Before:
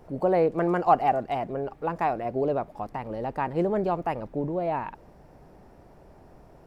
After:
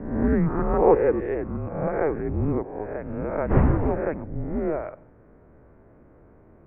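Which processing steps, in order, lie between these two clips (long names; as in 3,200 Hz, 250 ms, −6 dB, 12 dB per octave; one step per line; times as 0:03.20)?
peak hold with a rise ahead of every peak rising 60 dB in 0.88 s
0:03.49–0:04.02: wind on the microphone 380 Hz −21 dBFS
on a send at −21.5 dB: convolution reverb RT60 0.55 s, pre-delay 80 ms
on the sum: single-sideband voice off tune −310 Hz 230–2,400 Hz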